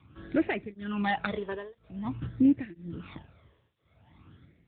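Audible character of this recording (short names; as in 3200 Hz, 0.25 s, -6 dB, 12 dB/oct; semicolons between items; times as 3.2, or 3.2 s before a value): a buzz of ramps at a fixed pitch in blocks of 8 samples; tremolo triangle 1 Hz, depth 100%; phasing stages 12, 0.48 Hz, lowest notch 230–1100 Hz; AMR-NB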